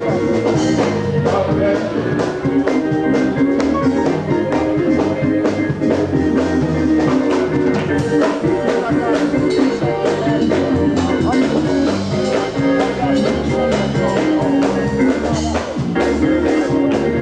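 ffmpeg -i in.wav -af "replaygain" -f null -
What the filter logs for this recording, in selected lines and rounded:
track_gain = -1.4 dB
track_peak = 0.508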